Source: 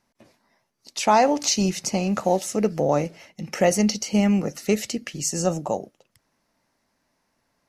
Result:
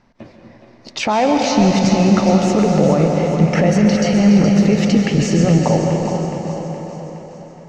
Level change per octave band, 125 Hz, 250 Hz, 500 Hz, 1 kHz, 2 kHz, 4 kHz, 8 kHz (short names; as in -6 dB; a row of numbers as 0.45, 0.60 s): +14.0, +11.0, +7.0, +4.5, +7.5, +4.5, -1.0 dB